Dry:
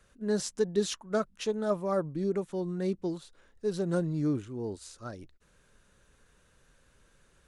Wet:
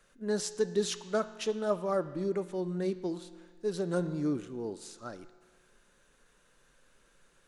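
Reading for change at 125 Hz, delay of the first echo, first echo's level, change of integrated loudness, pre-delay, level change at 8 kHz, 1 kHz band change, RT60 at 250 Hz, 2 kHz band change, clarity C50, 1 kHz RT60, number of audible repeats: -4.0 dB, none, none, -1.5 dB, 6 ms, 0.0 dB, 0.0 dB, 1.6 s, 0.0 dB, 13.0 dB, 1.6 s, none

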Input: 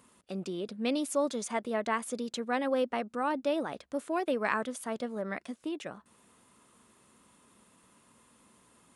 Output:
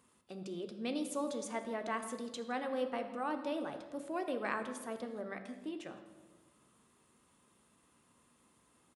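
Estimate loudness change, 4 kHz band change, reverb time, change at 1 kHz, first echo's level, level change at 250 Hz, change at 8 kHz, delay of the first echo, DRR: -6.5 dB, -6.5 dB, 1.3 s, -6.0 dB, -20.5 dB, -6.0 dB, -7.0 dB, 0.165 s, 6.5 dB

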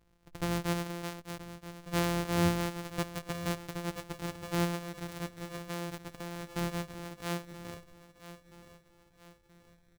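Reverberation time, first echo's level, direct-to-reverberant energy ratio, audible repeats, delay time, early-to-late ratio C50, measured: none, -14.0 dB, none, 3, 0.977 s, none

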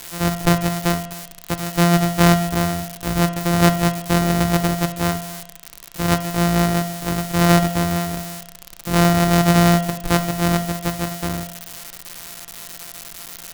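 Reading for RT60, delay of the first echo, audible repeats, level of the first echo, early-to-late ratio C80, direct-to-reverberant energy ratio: 0.75 s, none, none, none, 15.5 dB, 9.0 dB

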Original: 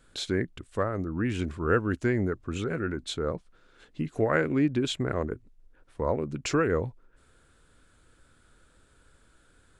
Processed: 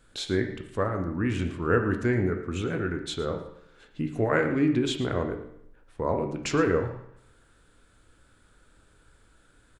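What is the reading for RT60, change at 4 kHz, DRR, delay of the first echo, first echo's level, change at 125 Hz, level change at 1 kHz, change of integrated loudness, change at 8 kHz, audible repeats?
0.75 s, +0.5 dB, 4.0 dB, 0.113 s, -15.0 dB, +1.5 dB, +1.5 dB, +1.5 dB, 0.0 dB, 1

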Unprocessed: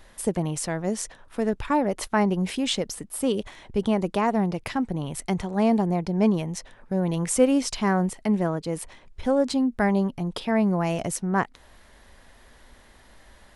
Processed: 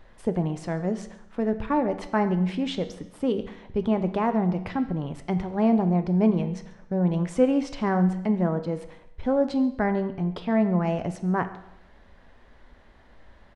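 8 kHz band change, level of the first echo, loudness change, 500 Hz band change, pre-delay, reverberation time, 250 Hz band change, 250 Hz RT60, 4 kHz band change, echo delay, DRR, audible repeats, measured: under -15 dB, -22.0 dB, -0.5 dB, -0.5 dB, 11 ms, 0.80 s, 0.0 dB, 0.80 s, -8.0 dB, 0.139 s, 9.0 dB, 1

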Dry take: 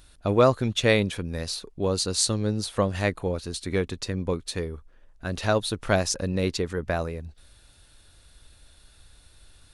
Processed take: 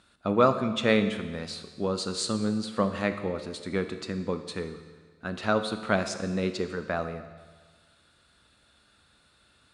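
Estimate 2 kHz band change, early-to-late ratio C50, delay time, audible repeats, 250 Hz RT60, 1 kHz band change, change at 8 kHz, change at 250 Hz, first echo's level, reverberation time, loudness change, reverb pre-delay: -2.0 dB, 10.0 dB, none, none, 1.5 s, 0.0 dB, -9.5 dB, 0.0 dB, none, 1.5 s, -2.5 dB, 14 ms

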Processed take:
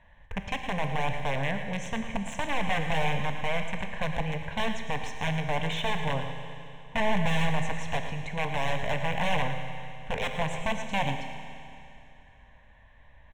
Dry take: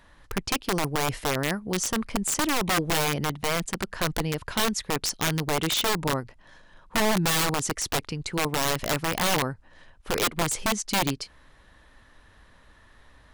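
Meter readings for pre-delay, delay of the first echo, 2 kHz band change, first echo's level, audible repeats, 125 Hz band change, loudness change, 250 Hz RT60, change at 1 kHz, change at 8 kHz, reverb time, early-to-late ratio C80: 14 ms, 0.112 s, -2.0 dB, -11.0 dB, 1, -1.0 dB, -4.5 dB, 2.8 s, -2.0 dB, -18.0 dB, 2.8 s, 5.5 dB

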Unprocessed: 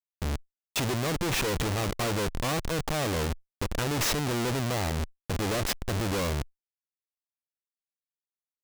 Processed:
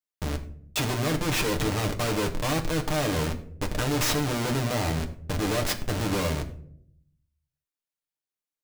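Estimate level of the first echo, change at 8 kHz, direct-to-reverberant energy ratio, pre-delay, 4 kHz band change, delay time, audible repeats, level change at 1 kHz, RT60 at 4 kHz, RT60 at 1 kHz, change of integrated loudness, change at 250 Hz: none, +1.0 dB, 3.0 dB, 7 ms, +1.5 dB, none, none, +1.5 dB, 0.35 s, 0.50 s, +2.0 dB, +3.5 dB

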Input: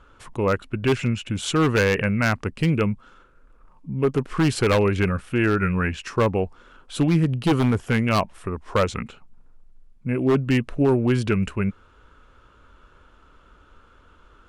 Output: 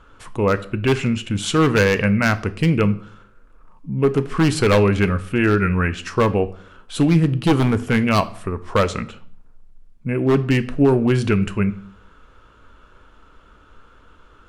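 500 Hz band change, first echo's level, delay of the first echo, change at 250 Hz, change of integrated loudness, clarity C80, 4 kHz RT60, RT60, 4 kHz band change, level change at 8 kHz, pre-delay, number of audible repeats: +3.5 dB, none, none, +3.5 dB, +3.5 dB, 20.5 dB, 0.45 s, 0.55 s, +3.0 dB, +3.0 dB, 4 ms, none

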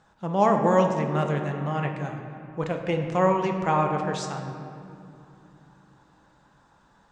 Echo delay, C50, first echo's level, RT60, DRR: none, 5.5 dB, none, 2.6 s, 3.0 dB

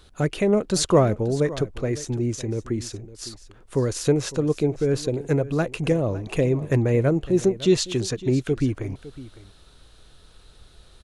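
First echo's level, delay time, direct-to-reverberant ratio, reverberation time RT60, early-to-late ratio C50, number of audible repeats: -17.0 dB, 0.557 s, none, none, none, 1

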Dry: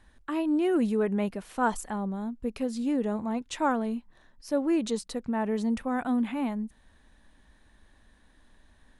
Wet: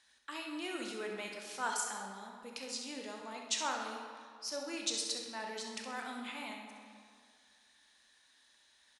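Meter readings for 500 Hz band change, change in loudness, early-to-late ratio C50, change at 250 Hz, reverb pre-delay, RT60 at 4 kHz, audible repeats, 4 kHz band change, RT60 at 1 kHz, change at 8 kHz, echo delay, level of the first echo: -14.0 dB, -10.0 dB, 2.0 dB, -19.5 dB, 19 ms, 1.3 s, 1, +5.5 dB, 2.2 s, +5.0 dB, 66 ms, -9.0 dB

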